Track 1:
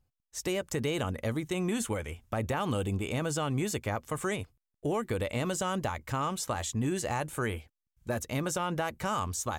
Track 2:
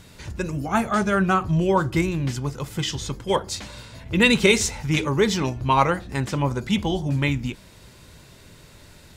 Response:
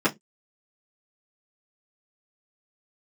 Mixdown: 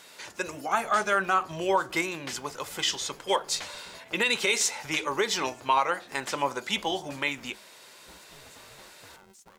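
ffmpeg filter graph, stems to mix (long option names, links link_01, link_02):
-filter_complex "[0:a]acompressor=threshold=-36dB:ratio=2.5,aeval=exprs='val(0)*sgn(sin(2*PI*290*n/s))':channel_layout=same,volume=-17dB[link_01];[1:a]highpass=570,volume=1.5dB[link_02];[link_01][link_02]amix=inputs=2:normalize=0,alimiter=limit=-13.5dB:level=0:latency=1:release=174"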